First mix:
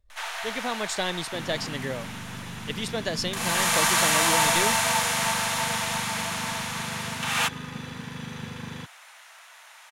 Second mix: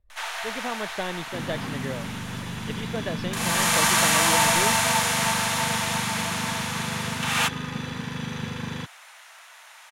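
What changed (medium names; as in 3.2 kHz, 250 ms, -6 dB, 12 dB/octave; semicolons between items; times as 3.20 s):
speech: add distance through air 370 m; second sound +5.0 dB; reverb: on, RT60 1.1 s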